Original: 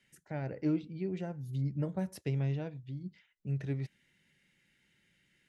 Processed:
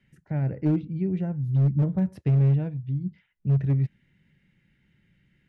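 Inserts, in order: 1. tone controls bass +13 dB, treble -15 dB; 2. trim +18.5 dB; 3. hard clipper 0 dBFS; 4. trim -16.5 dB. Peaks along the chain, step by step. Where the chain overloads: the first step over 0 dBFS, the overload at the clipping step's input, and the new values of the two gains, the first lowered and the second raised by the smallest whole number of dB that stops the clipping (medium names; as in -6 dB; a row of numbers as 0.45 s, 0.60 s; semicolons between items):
-15.0 dBFS, +3.5 dBFS, 0.0 dBFS, -16.5 dBFS; step 2, 3.5 dB; step 2 +14.5 dB, step 4 -12.5 dB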